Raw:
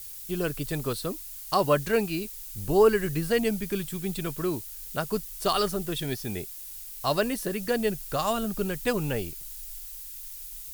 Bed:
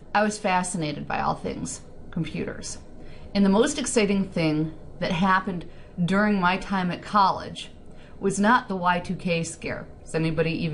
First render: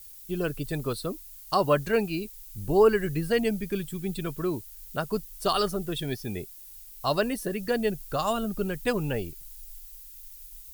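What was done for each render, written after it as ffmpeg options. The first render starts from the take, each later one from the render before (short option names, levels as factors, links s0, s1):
-af "afftdn=nr=8:nf=-41"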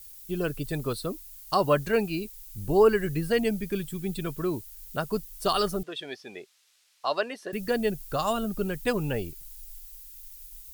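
-filter_complex "[0:a]asettb=1/sr,asplit=3[s0][s1][s2];[s0]atrim=end=5.834[s3];[s1]atrim=start=5.83:end=7.53,asetpts=PTS-STARTPTS,afade=t=in:d=0.004:c=qsin,afade=t=out:st=1.696:d=0.004:c=qsin,highpass=490,lowpass=4400[s4];[s2]atrim=start=7.526[s5];[s3][s4]acrossfade=d=0.004:c1=hsin:c2=qsin[s6];[s6][s5]acrossfade=d=0.004:c1=qsin:c2=hsin"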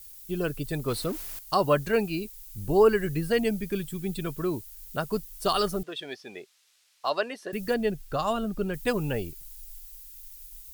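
-filter_complex "[0:a]asettb=1/sr,asplit=3[s0][s1][s2];[s0]atrim=end=0.884[s3];[s1]atrim=start=0.88:end=1.39,asetpts=PTS-STARTPTS,afade=t=in:d=0.004:c=qsin,afade=t=out:st=0.506:d=0.004:c=qsin,aeval=exprs='val(0)+0.5*0.0168*sgn(val(0))':c=same[s4];[s2]atrim=start=1.386[s5];[s3][s4]acrossfade=d=0.004:c1=hsin:c2=qsin[s6];[s6][s5]acrossfade=d=0.004:c1=qsin:c2=hsin,asettb=1/sr,asplit=3[s7][s8][s9];[s7]atrim=end=5.034[s10];[s8]atrim=start=5.03:end=7.1,asetpts=PTS-STARTPTS,afade=t=in:d=0.004:c=qsin,afade=t=out:st=2.066:d=0.004:c=qsin,acrusher=bits=8:mode=log:mix=0:aa=0.000001[s11];[s9]atrim=start=7.096[s12];[s10][s11]acrossfade=d=0.004:c1=hsin:c2=qsin[s13];[s13][s12]acrossfade=d=0.004:c1=qsin:c2=hsin,asettb=1/sr,asplit=3[s14][s15][s16];[s14]atrim=end=7.744[s17];[s15]atrim=start=7.74:end=8.74,asetpts=PTS-STARTPTS,afade=t=in:d=0.004:c=qsin,afade=t=out:st=0.996:d=0.004:c=qsin,highshelf=f=6500:g=-10.5[s18];[s16]atrim=start=8.736[s19];[s17][s18]acrossfade=d=0.004:c1=hsin:c2=qsin[s20];[s20][s19]acrossfade=d=0.004:c1=qsin:c2=hsin"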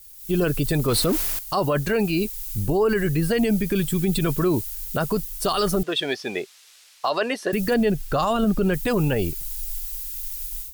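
-af "dynaudnorm=f=180:g=3:m=5.01,alimiter=limit=0.224:level=0:latency=1:release=32"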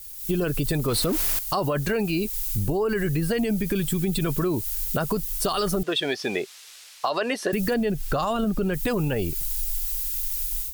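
-filter_complex "[0:a]asplit=2[s0][s1];[s1]alimiter=limit=0.0631:level=0:latency=1:release=137,volume=0.891[s2];[s0][s2]amix=inputs=2:normalize=0,acompressor=threshold=0.0891:ratio=6"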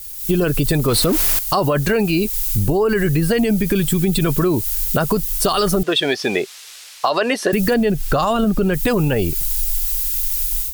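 -af "volume=2.37"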